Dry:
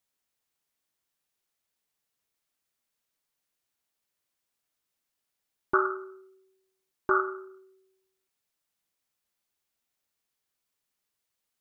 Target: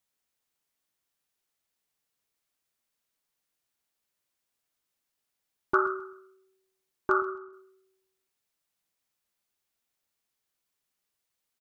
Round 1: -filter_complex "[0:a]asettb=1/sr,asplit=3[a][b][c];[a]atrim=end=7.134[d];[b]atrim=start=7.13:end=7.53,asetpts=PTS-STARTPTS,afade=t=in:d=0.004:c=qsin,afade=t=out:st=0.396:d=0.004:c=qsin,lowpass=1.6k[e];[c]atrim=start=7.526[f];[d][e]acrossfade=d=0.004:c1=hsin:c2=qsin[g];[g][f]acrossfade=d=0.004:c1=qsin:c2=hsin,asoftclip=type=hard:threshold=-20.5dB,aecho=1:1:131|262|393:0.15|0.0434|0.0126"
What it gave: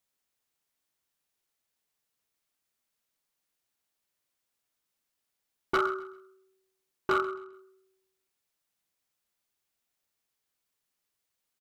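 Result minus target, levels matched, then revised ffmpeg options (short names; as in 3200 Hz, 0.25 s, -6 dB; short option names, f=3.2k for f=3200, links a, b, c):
hard clip: distortion +25 dB
-filter_complex "[0:a]asettb=1/sr,asplit=3[a][b][c];[a]atrim=end=7.134[d];[b]atrim=start=7.13:end=7.53,asetpts=PTS-STARTPTS,afade=t=in:d=0.004:c=qsin,afade=t=out:st=0.396:d=0.004:c=qsin,lowpass=1.6k[e];[c]atrim=start=7.526[f];[d][e]acrossfade=d=0.004:c1=hsin:c2=qsin[g];[g][f]acrossfade=d=0.004:c1=qsin:c2=hsin,asoftclip=type=hard:threshold=-11dB,aecho=1:1:131|262|393:0.15|0.0434|0.0126"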